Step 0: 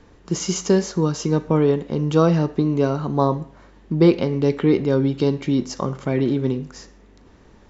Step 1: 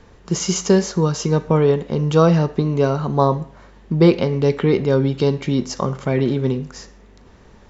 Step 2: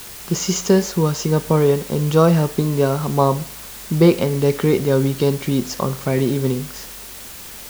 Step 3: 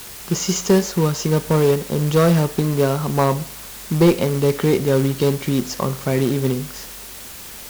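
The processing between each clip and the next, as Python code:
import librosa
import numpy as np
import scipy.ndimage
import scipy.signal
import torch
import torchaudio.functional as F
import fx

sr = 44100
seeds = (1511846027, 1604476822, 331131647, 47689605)

y1 = fx.peak_eq(x, sr, hz=300.0, db=-7.5, octaves=0.32)
y1 = F.gain(torch.from_numpy(y1), 3.5).numpy()
y2 = fx.quant_dither(y1, sr, seeds[0], bits=6, dither='triangular')
y3 = fx.quant_float(y2, sr, bits=2)
y3 = fx.clip_asym(y3, sr, top_db=-9.0, bottom_db=-5.0)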